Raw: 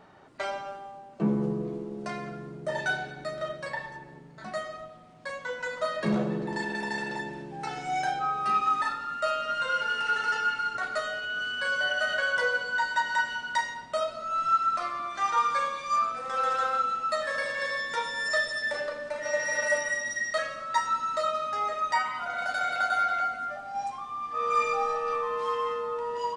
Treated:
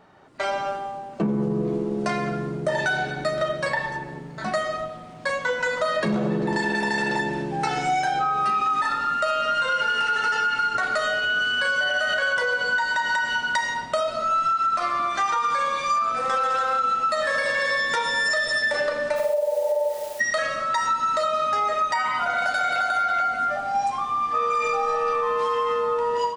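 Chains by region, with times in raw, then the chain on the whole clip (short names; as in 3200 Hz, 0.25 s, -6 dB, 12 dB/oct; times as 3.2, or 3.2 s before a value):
19.15–20.19 elliptic band-pass 400–850 Hz + flutter echo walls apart 7.9 m, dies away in 0.71 s + added noise white -54 dBFS
whole clip: AGC gain up to 12 dB; limiter -11 dBFS; compressor, threshold -20 dBFS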